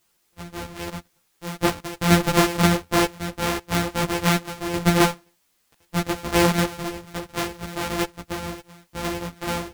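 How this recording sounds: a buzz of ramps at a fixed pitch in blocks of 256 samples; tremolo saw down 3.8 Hz, depth 55%; a quantiser's noise floor 12-bit, dither triangular; a shimmering, thickened sound

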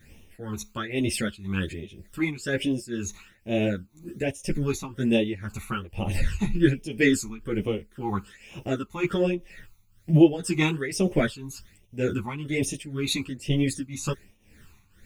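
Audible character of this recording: a quantiser's noise floor 12-bit, dither triangular; phasing stages 12, 1.2 Hz, lowest notch 520–1500 Hz; tremolo triangle 2 Hz, depth 85%; a shimmering, thickened sound

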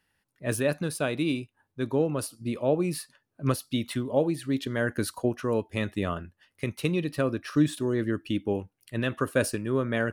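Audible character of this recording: noise floor -79 dBFS; spectral tilt -6.0 dB/oct

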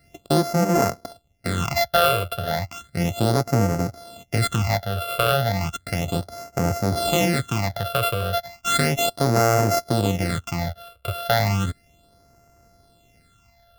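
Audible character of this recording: a buzz of ramps at a fixed pitch in blocks of 64 samples; phasing stages 8, 0.34 Hz, lowest notch 250–3500 Hz

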